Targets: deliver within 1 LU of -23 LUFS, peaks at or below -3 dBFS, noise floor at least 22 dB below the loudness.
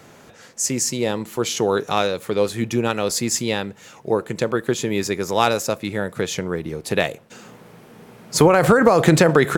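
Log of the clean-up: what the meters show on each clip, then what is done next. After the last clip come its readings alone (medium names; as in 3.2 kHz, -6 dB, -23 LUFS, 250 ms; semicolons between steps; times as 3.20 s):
loudness -20.0 LUFS; peak level -1.5 dBFS; loudness target -23.0 LUFS
-> trim -3 dB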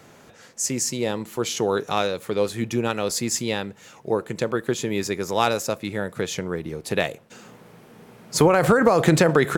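loudness -23.0 LUFS; peak level -4.5 dBFS; noise floor -50 dBFS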